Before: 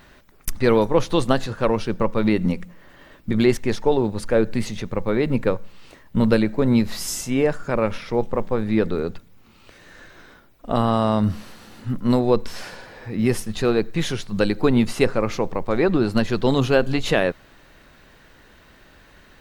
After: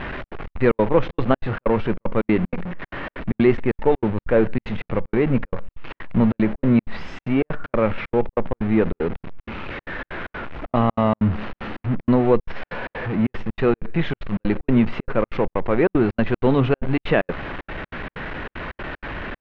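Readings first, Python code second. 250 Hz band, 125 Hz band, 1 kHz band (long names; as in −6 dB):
+0.5 dB, +1.0 dB, +0.5 dB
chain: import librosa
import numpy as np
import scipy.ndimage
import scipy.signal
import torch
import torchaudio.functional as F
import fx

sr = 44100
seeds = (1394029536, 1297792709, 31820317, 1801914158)

y = x + 0.5 * 10.0 ** (-23.5 / 20.0) * np.sign(x)
y = scipy.signal.sosfilt(scipy.signal.butter(4, 2600.0, 'lowpass', fs=sr, output='sos'), y)
y = fx.step_gate(y, sr, bpm=190, pattern='xxx.xx.xx.x', floor_db=-60.0, edge_ms=4.5)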